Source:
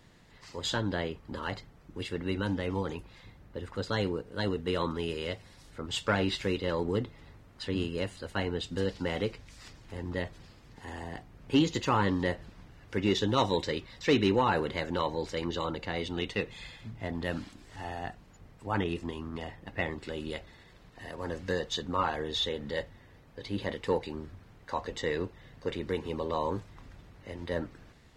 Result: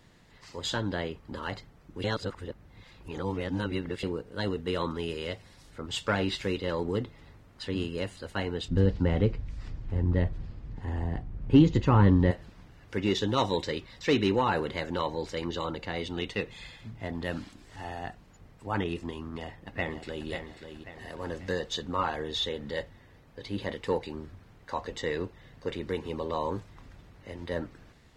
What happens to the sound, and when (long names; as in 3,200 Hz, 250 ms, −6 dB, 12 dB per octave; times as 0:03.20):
0:02.04–0:04.03: reverse
0:08.68–0:12.31: RIAA equalisation playback
0:19.21–0:20.29: delay throw 540 ms, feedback 45%, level −8 dB